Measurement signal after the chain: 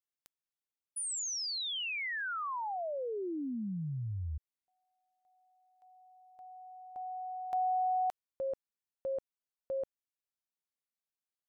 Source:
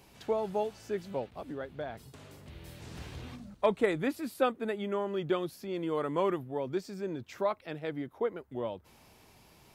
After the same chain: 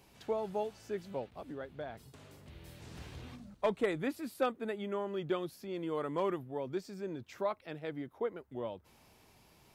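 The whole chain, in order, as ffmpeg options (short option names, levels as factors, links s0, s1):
-af "volume=8.41,asoftclip=hard,volume=0.119,volume=0.631"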